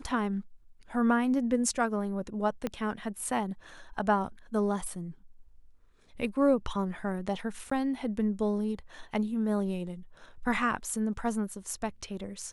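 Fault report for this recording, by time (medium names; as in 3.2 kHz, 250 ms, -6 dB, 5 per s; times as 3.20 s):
2.67 s: pop -18 dBFS
7.70–7.71 s: dropout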